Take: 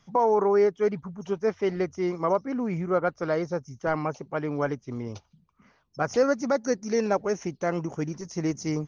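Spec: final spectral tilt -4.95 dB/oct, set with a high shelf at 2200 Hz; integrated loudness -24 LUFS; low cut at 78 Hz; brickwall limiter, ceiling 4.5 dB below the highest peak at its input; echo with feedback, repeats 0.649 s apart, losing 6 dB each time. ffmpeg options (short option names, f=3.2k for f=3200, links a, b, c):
-af "highpass=78,highshelf=f=2.2k:g=-8,alimiter=limit=-17dB:level=0:latency=1,aecho=1:1:649|1298|1947|2596|3245|3894:0.501|0.251|0.125|0.0626|0.0313|0.0157,volume=4dB"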